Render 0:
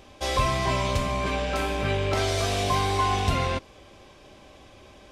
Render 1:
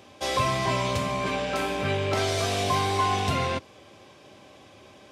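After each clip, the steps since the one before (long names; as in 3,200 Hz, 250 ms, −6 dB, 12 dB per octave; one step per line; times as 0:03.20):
high-pass filter 93 Hz 24 dB per octave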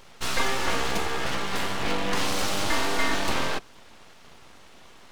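full-wave rectification
level +2.5 dB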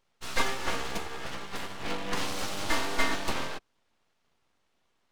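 expander for the loud parts 2.5 to 1, over −35 dBFS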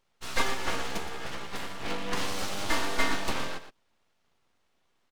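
single-tap delay 118 ms −11 dB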